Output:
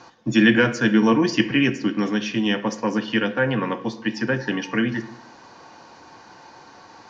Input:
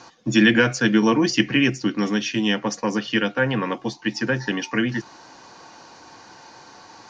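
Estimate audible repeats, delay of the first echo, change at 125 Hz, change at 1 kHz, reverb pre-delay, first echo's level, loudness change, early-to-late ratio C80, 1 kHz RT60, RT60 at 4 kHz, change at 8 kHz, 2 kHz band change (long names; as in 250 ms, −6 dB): no echo audible, no echo audible, −0.5 dB, 0.0 dB, 13 ms, no echo audible, 0.0 dB, 16.0 dB, 0.95 s, 0.60 s, can't be measured, −0.5 dB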